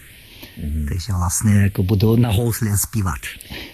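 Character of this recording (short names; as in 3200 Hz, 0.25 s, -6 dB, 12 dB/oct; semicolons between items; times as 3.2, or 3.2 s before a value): a quantiser's noise floor 8-bit, dither triangular; phasing stages 4, 0.62 Hz, lowest notch 480–1400 Hz; Vorbis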